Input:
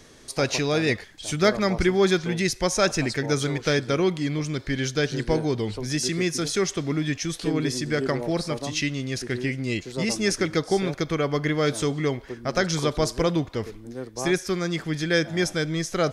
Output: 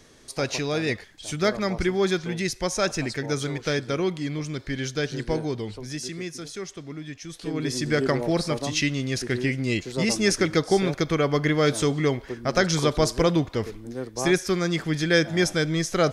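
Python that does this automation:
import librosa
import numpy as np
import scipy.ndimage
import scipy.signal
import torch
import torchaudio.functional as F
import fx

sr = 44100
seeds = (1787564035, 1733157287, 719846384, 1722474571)

y = fx.gain(x, sr, db=fx.line((5.41, -3.0), (6.53, -11.0), (7.21, -11.0), (7.86, 2.0)))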